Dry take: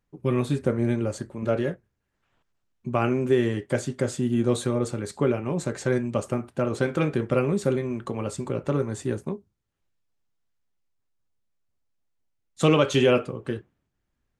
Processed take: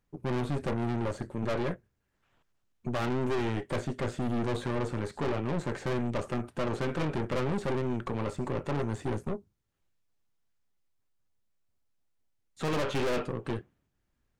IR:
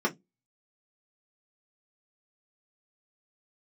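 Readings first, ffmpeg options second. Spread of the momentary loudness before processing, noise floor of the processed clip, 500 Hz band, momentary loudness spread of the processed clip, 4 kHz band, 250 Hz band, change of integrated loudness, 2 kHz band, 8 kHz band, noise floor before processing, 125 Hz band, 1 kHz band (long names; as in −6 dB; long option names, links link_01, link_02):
10 LU, −78 dBFS, −8.0 dB, 5 LU, −7.0 dB, −7.0 dB, −7.0 dB, −5.0 dB, −11.0 dB, −78 dBFS, −6.0 dB, −3.0 dB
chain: -filter_complex "[0:a]acrossover=split=3000[link_01][link_02];[link_02]acompressor=threshold=-53dB:ratio=4:attack=1:release=60[link_03];[link_01][link_03]amix=inputs=2:normalize=0,aeval=exprs='(tanh(39.8*val(0)+0.7)-tanh(0.7))/39.8':channel_layout=same,volume=4dB"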